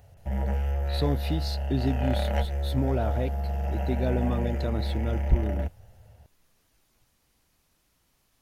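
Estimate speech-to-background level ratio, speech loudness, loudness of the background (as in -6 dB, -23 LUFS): -1.5 dB, -31.5 LUFS, -30.0 LUFS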